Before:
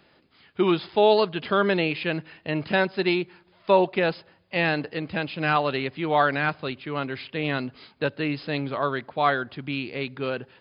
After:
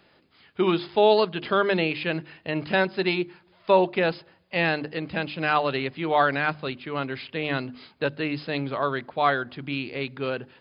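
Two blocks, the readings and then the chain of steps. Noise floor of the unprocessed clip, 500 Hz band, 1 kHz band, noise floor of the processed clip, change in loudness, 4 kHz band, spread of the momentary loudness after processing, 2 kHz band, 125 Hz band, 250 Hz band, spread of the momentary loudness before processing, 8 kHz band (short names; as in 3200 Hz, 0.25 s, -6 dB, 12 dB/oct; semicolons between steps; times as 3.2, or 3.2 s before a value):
-60 dBFS, 0.0 dB, 0.0 dB, -60 dBFS, -0.5 dB, 0.0 dB, 10 LU, 0.0 dB, -1.5 dB, -1.0 dB, 10 LU, n/a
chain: notches 50/100/150/200/250/300/350 Hz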